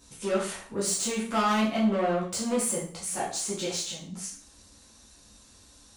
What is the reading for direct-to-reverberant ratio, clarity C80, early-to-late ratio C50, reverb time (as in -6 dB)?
-7.0 dB, 10.0 dB, 5.5 dB, 0.50 s